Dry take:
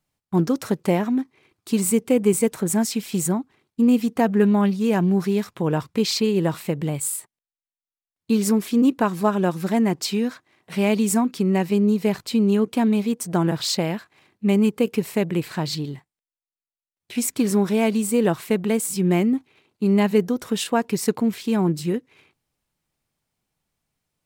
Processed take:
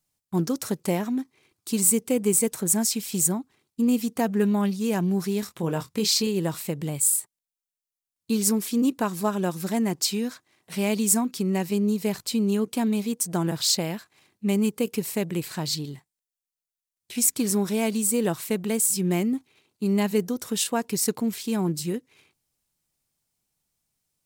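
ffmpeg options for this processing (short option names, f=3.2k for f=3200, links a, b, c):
-filter_complex "[0:a]asettb=1/sr,asplit=3[a][b][c];[a]atrim=end=5.404[d];[b]atrim=start=5.4:end=6.27,asetpts=PTS-STARTPTS,afade=t=in:d=0.004:c=qsin,afade=t=out:st=0.866:d=0.004:c=qsin,asplit=2[e][f];[f]adelay=24,volume=-8.5dB[g];[e][g]amix=inputs=2:normalize=0,atrim=end_sample=38367[h];[c]atrim=start=6.266[i];[d][h]acrossfade=d=0.004:c1=hsin:c2=qsin[j];[j][i]acrossfade=d=0.004:c1=qsin:c2=hsin,bass=f=250:g=1,treble=f=4k:g=11,volume=-5.5dB"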